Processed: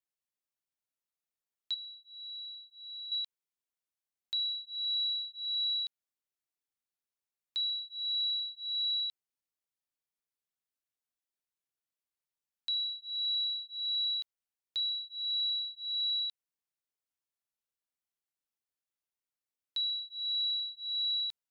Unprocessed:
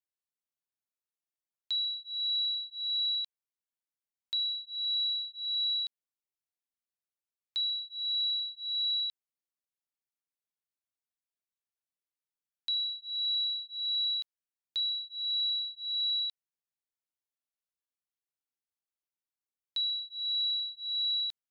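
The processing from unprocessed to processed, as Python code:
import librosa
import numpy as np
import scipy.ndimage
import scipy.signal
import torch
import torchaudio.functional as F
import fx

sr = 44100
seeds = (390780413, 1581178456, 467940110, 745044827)

y = fx.peak_eq(x, sr, hz=4000.0, db=-11.5, octaves=0.77, at=(1.74, 3.12))
y = y * librosa.db_to_amplitude(-1.5)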